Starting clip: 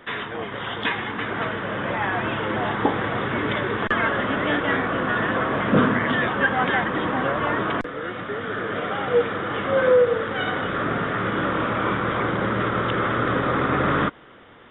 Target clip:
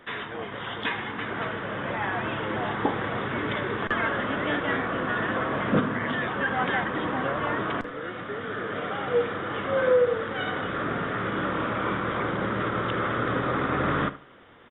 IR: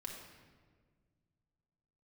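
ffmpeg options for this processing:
-filter_complex "[0:a]asplit=3[link_01][link_02][link_03];[link_01]afade=type=out:start_time=5.79:duration=0.02[link_04];[link_02]acompressor=threshold=-19dB:ratio=6,afade=type=in:start_time=5.79:duration=0.02,afade=type=out:start_time=6.45:duration=0.02[link_05];[link_03]afade=type=in:start_time=6.45:duration=0.02[link_06];[link_04][link_05][link_06]amix=inputs=3:normalize=0,asplit=2[link_07][link_08];[link_08]adelay=73,lowpass=frequency=3300:poles=1,volume=-14.5dB,asplit=2[link_09][link_10];[link_10]adelay=73,lowpass=frequency=3300:poles=1,volume=0.25,asplit=2[link_11][link_12];[link_12]adelay=73,lowpass=frequency=3300:poles=1,volume=0.25[link_13];[link_09][link_11][link_13]amix=inputs=3:normalize=0[link_14];[link_07][link_14]amix=inputs=2:normalize=0,volume=-4.5dB"

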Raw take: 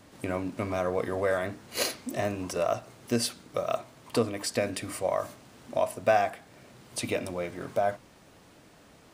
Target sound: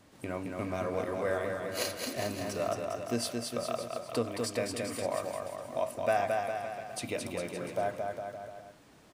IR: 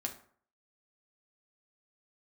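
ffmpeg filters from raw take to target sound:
-af "aecho=1:1:220|407|566|701.1|815.9:0.631|0.398|0.251|0.158|0.1,volume=-5.5dB"

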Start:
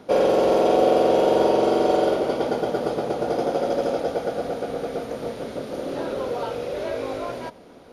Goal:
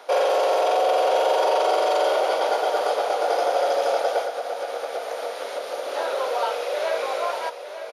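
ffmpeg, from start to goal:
ffmpeg -i in.wav -filter_complex "[0:a]alimiter=limit=-15.5dB:level=0:latency=1:release=13,highpass=frequency=580:width=0.5412,highpass=frequency=580:width=1.3066,asplit=2[link_01][link_02];[link_02]aecho=0:1:902:0.299[link_03];[link_01][link_03]amix=inputs=2:normalize=0,asettb=1/sr,asplit=3[link_04][link_05][link_06];[link_04]atrim=end=4.214[link_07];[link_05]atrim=start=4.21:end=5.94,asetpts=PTS-STARTPTS,afade=type=in:duration=0.004:curve=qsin,afade=type=out:start_time=1.726:duration=0.004:curve=qsin,acompressor=threshold=-32dB:ratio=6[link_08];[link_06]atrim=start=5.936[link_09];[link_07][link_08]acrossfade=duration=0.004:curve1=hsin:curve2=qsin[link_10];[link_10][link_09]acrossfade=duration=0.004:curve1=qsin:curve2=hsin,volume=7dB" out.wav

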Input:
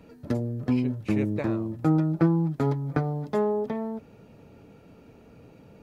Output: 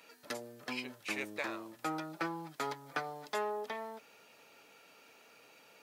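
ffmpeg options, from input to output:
ffmpeg -i in.wav -filter_complex "[0:a]asplit=2[link_01][link_02];[link_02]highpass=frequency=720:poles=1,volume=14dB,asoftclip=type=tanh:threshold=-9dB[link_03];[link_01][link_03]amix=inputs=2:normalize=0,lowpass=frequency=2400:poles=1,volume=-6dB,aderivative,volume=8dB" out.wav

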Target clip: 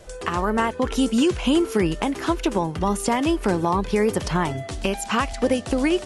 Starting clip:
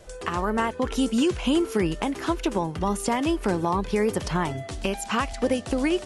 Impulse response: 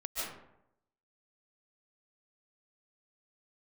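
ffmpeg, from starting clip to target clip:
-af "volume=3dB"

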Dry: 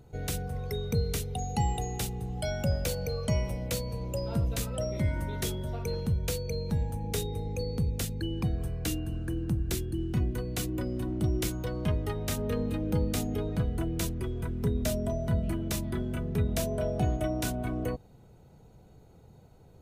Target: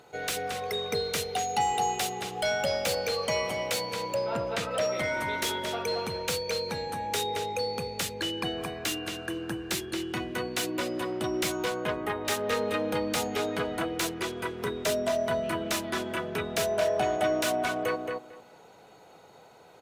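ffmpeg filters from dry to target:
ffmpeg -i in.wav -filter_complex "[0:a]asettb=1/sr,asplit=3[link_01][link_02][link_03];[link_01]atrim=end=4.144[link_04];[link_02]atrim=start=4.14:end=4.71,asetpts=PTS-STARTPTS,afade=type=in:duration=0.004:curve=qsin,afade=type=out:start_time=0.566:duration=0.004:curve=qsin,aemphasis=mode=reproduction:type=75fm[link_05];[link_03]atrim=start=4.706[link_06];[link_04][link_05]acrossfade=duration=0.004:curve1=hsin:curve2=qsin[link_07];[link_07][link_06]acrossfade=duration=0.004:curve1=qsin:curve2=hsin,highpass=frequency=740:poles=1,asettb=1/sr,asplit=3[link_08][link_09][link_10];[link_08]atrim=end=11.704[link_11];[link_09]atrim=start=11.7:end=12.25,asetpts=PTS-STARTPTS,afade=type=in:duration=0.004:curve=qsin,afade=type=out:start_time=0.546:duration=0.004:curve=qsin,equalizer=frequency=4900:width=1:gain=-14.5[link_12];[link_10]atrim=start=12.246[link_13];[link_11][link_12]acrossfade=duration=0.004:curve1=hsin:curve2=qsin[link_14];[link_14][link_13]acrossfade=duration=0.004:curve1=qsin:curve2=hsin,asplit=2[link_15][link_16];[link_16]highpass=frequency=720:poles=1,volume=16dB,asoftclip=type=tanh:threshold=-21.5dB[link_17];[link_15][link_17]amix=inputs=2:normalize=0,lowpass=frequency=3200:poles=1,volume=-6dB,asplit=2[link_18][link_19];[link_19]adelay=224,lowpass=frequency=3600:poles=1,volume=-3.5dB,asplit=2[link_20][link_21];[link_21]adelay=224,lowpass=frequency=3600:poles=1,volume=0.17,asplit=2[link_22][link_23];[link_23]adelay=224,lowpass=frequency=3600:poles=1,volume=0.17[link_24];[link_18][link_20][link_22][link_24]amix=inputs=4:normalize=0,volume=4.5dB" out.wav

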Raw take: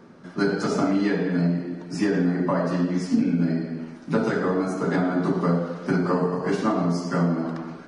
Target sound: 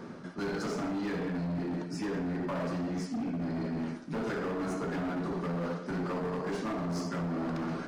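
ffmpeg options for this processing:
ffmpeg -i in.wav -af "areverse,acompressor=threshold=-32dB:ratio=8,areverse,asoftclip=type=hard:threshold=-35dB,volume=4.5dB" out.wav

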